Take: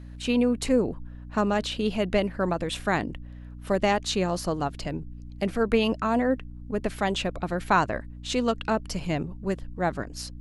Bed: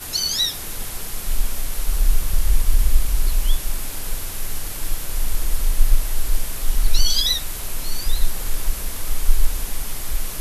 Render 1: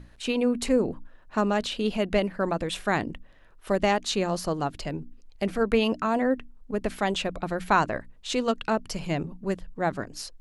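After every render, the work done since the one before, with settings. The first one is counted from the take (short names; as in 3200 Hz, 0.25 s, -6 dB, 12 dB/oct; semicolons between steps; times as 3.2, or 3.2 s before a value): notches 60/120/180/240/300 Hz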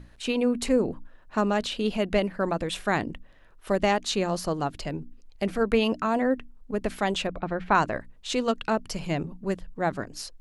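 7.27–7.75 LPF 2600 Hz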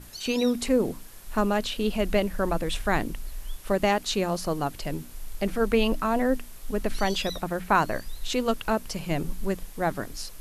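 add bed -17.5 dB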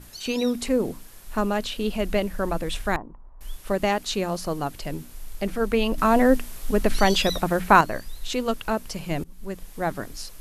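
2.96–3.41 ladder low-pass 1100 Hz, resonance 65%; 5.98–7.81 gain +6.5 dB; 9.24–9.75 fade in, from -21.5 dB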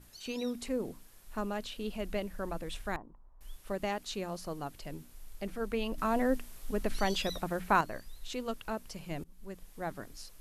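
gain -11.5 dB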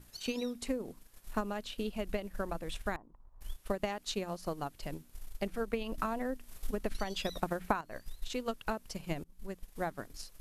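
compressor 6:1, threshold -33 dBFS, peak gain reduction 12 dB; transient shaper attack +7 dB, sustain -6 dB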